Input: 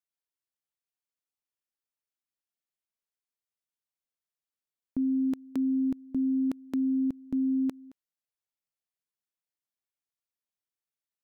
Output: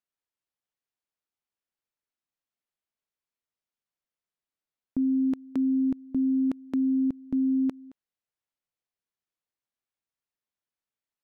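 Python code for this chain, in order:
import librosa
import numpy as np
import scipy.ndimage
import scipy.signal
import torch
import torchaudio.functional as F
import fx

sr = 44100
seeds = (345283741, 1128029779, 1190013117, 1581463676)

y = fx.lowpass(x, sr, hz=3100.0, slope=6)
y = F.gain(torch.from_numpy(y), 2.5).numpy()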